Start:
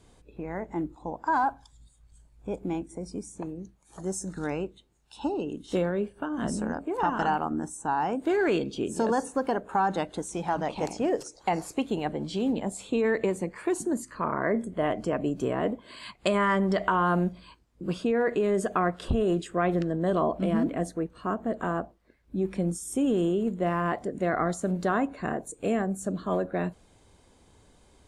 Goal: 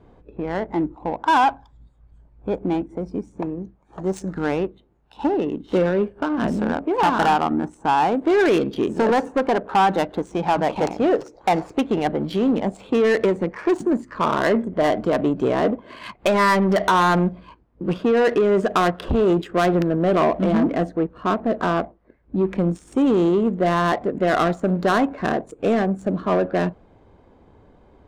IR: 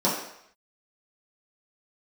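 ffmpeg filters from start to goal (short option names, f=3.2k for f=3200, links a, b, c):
-af "aeval=exprs='0.316*(cos(1*acos(clip(val(0)/0.316,-1,1)))-cos(1*PI/2))+0.112*(cos(5*acos(clip(val(0)/0.316,-1,1)))-cos(5*PI/2))':c=same,adynamicsmooth=sensitivity=2.5:basefreq=1.3k,lowshelf=f=180:g=-5.5,volume=2dB"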